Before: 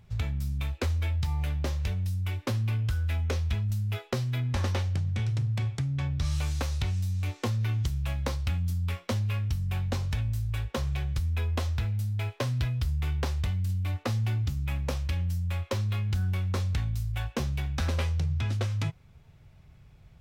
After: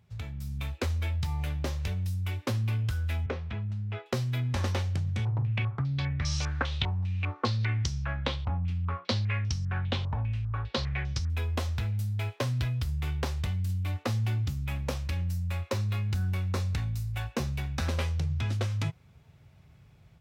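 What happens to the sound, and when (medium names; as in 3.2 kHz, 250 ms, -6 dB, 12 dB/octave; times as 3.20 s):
3.26–4.06 s: band-pass 110–2300 Hz
5.25–11.30 s: step-sequenced low-pass 5 Hz 930–5600 Hz
15.04–17.85 s: band-stop 3.2 kHz
whole clip: high-pass 71 Hz; level rider gain up to 6.5 dB; trim -6.5 dB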